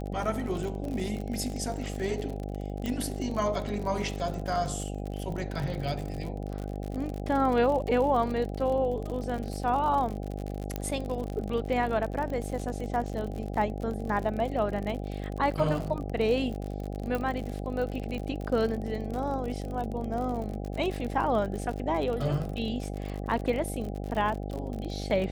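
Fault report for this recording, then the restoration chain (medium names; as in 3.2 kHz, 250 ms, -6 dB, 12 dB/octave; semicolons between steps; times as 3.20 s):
buzz 50 Hz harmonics 16 -35 dBFS
crackle 53 per s -33 dBFS
2.86 s: pop
10.76 s: pop -17 dBFS
17.15 s: pop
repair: de-click; de-hum 50 Hz, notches 16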